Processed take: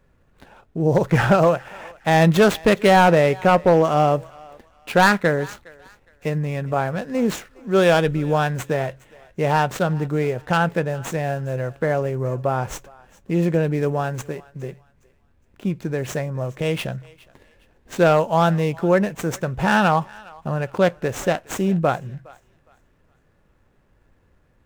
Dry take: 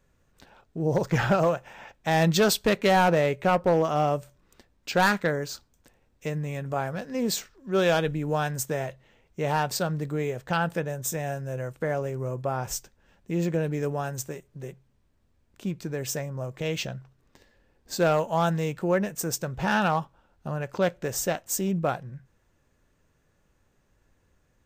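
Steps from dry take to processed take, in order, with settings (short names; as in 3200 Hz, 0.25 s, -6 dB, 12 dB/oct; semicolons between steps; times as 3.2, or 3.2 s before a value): median filter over 9 samples; on a send: thinning echo 0.412 s, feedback 32%, high-pass 770 Hz, level -21 dB; on the sum: gain +7 dB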